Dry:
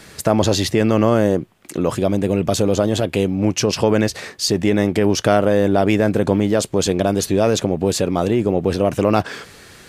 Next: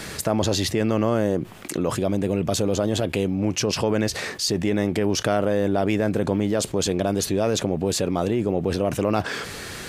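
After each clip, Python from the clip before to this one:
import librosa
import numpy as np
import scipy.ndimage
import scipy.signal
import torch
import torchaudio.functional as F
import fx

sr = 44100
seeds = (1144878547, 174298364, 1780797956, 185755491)

y = fx.env_flatten(x, sr, amount_pct=50)
y = F.gain(torch.from_numpy(y), -7.5).numpy()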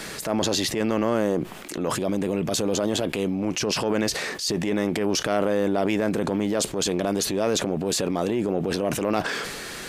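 y = fx.peak_eq(x, sr, hz=87.0, db=-14.0, octaves=0.99)
y = fx.transient(y, sr, attack_db=-7, sustain_db=5)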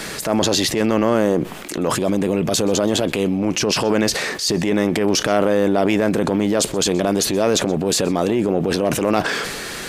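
y = x + 10.0 ** (-23.0 / 20.0) * np.pad(x, (int(126 * sr / 1000.0), 0))[:len(x)]
y = F.gain(torch.from_numpy(y), 6.0).numpy()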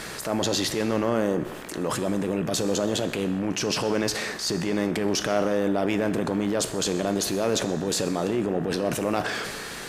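y = fx.rev_gated(x, sr, seeds[0], gate_ms=430, shape='falling', drr_db=10.5)
y = fx.dmg_buzz(y, sr, base_hz=60.0, harmonics=32, level_db=-38.0, tilt_db=0, odd_only=False)
y = F.gain(torch.from_numpy(y), -7.5).numpy()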